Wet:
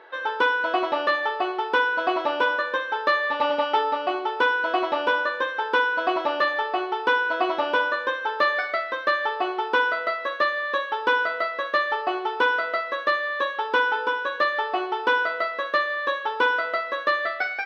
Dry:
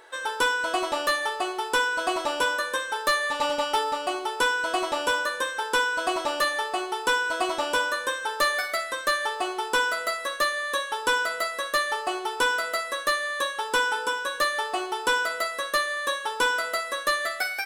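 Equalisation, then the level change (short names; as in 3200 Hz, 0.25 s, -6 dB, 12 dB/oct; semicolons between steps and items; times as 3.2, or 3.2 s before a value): HPF 220 Hz 12 dB/oct; air absorption 260 m; bell 8100 Hz -14 dB 0.69 oct; +4.5 dB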